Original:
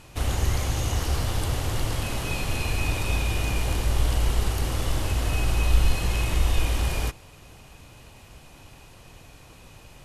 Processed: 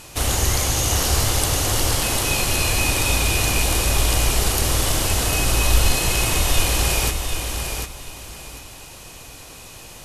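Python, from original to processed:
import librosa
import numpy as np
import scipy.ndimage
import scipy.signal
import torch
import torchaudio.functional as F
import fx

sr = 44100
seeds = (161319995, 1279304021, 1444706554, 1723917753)

y = fx.bass_treble(x, sr, bass_db=-5, treble_db=8)
y = fx.echo_feedback(y, sr, ms=748, feedback_pct=23, wet_db=-6.0)
y = y * 10.0 ** (7.0 / 20.0)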